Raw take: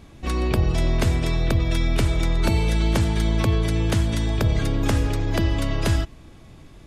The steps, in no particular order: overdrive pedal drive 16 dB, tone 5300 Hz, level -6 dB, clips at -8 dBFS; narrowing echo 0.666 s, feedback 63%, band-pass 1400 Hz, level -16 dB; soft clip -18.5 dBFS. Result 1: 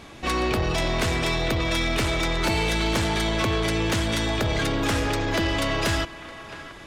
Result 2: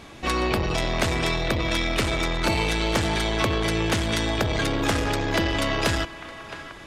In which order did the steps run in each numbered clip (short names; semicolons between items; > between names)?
overdrive pedal > narrowing echo > soft clip; narrowing echo > soft clip > overdrive pedal